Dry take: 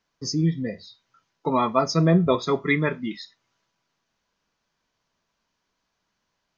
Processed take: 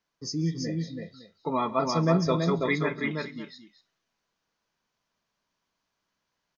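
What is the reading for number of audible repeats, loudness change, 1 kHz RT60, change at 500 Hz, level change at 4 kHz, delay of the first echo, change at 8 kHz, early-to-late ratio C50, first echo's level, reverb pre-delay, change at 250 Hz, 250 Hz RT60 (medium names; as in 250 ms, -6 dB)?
4, -4.5 dB, no reverb, -3.5 dB, -3.5 dB, 137 ms, no reading, no reverb, -20.0 dB, no reverb, -4.5 dB, no reverb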